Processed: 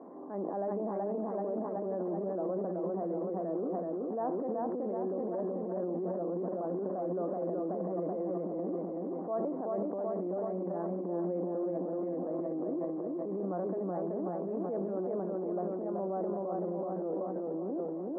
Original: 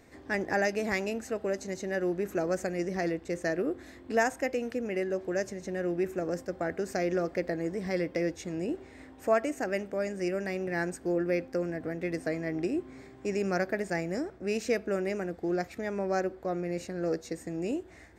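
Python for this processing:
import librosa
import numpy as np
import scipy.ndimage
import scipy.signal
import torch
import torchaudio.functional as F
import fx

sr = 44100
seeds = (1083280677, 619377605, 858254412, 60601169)

y = fx.echo_feedback(x, sr, ms=378, feedback_pct=59, wet_db=-3.5)
y = fx.transient(y, sr, attack_db=-9, sustain_db=10)
y = scipy.signal.sosfilt(scipy.signal.cheby1(4, 1.0, [180.0, 1100.0], 'bandpass', fs=sr, output='sos'), y)
y = fx.low_shelf(y, sr, hz=350.0, db=-4.0)
y = fx.env_flatten(y, sr, amount_pct=50)
y = F.gain(torch.from_numpy(y), -6.0).numpy()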